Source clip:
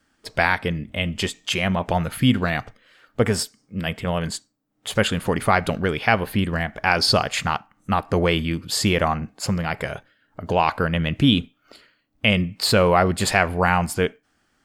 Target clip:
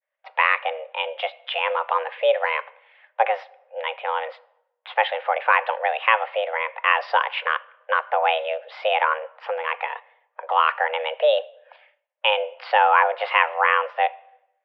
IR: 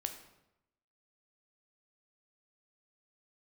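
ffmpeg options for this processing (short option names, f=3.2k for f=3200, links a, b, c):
-filter_complex "[0:a]agate=range=-33dB:threshold=-54dB:ratio=3:detection=peak,asplit=2[a][b];[1:a]atrim=start_sample=2205,asetrate=48510,aresample=44100[c];[b][c]afir=irnorm=-1:irlink=0,volume=-11dB[d];[a][d]amix=inputs=2:normalize=0,highpass=f=200:t=q:w=0.5412,highpass=f=200:t=q:w=1.307,lowpass=f=2.7k:t=q:w=0.5176,lowpass=f=2.7k:t=q:w=0.7071,lowpass=f=2.7k:t=q:w=1.932,afreqshift=320,volume=-1dB"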